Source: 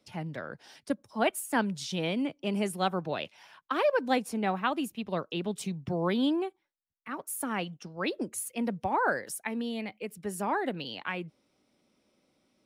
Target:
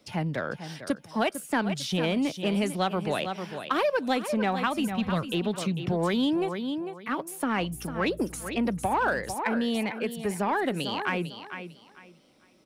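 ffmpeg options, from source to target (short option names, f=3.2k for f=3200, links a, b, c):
-filter_complex "[0:a]aecho=1:1:449|898|1347:0.237|0.0522|0.0115,asplit=3[a][b][c];[a]afade=t=out:st=4.63:d=0.02[d];[b]asubboost=boost=8.5:cutoff=120,afade=t=in:st=4.63:d=0.02,afade=t=out:st=5.32:d=0.02[e];[c]afade=t=in:st=5.32:d=0.02[f];[d][e][f]amix=inputs=3:normalize=0,acrossover=split=1900|4800[g][h][i];[g]acompressor=threshold=-31dB:ratio=4[j];[h]acompressor=threshold=-42dB:ratio=4[k];[i]acompressor=threshold=-51dB:ratio=4[l];[j][k][l]amix=inputs=3:normalize=0,asplit=2[m][n];[n]asoftclip=type=tanh:threshold=-33.5dB,volume=-5.5dB[o];[m][o]amix=inputs=2:normalize=0,asettb=1/sr,asplit=3[p][q][r];[p]atrim=end=7.604[s];[q]atrim=start=7.6:end=9.34,asetpts=PTS-STARTPTS,afade=t=in:d=0.004:c=qsin,afade=t=out:st=1.736:d=0.004:c=qsin,aeval=exprs='val(0)+0.00316*(sin(2*PI*60*n/s)+sin(2*PI*2*60*n/s)/2+sin(2*PI*3*60*n/s)/3+sin(2*PI*4*60*n/s)/4+sin(2*PI*5*60*n/s)/5)':c=same[t];[r]atrim=start=9.336[u];[s][t]acrossfade=d=0.004:c1=hsin:c2=qsin[v];[v][u]acrossfade=d=0.004:c1=qsin:c2=hsin,volume=5dB"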